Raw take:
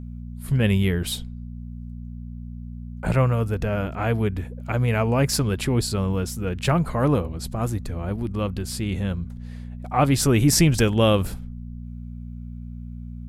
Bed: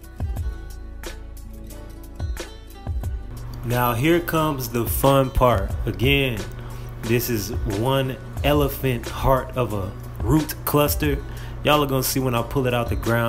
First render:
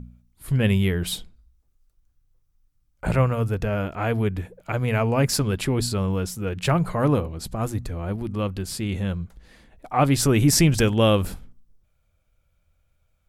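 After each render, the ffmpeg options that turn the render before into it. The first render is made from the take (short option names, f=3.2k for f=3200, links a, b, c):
-af "bandreject=f=60:t=h:w=4,bandreject=f=120:t=h:w=4,bandreject=f=180:t=h:w=4,bandreject=f=240:t=h:w=4"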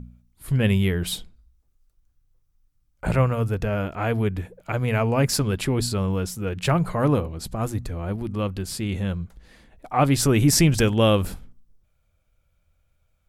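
-af anull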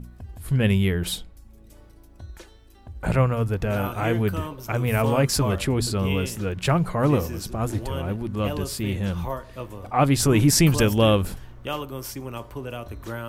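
-filter_complex "[1:a]volume=-12.5dB[a];[0:a][a]amix=inputs=2:normalize=0"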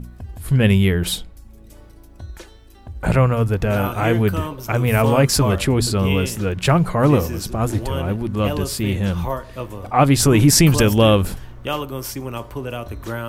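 -af "volume=5.5dB,alimiter=limit=-3dB:level=0:latency=1"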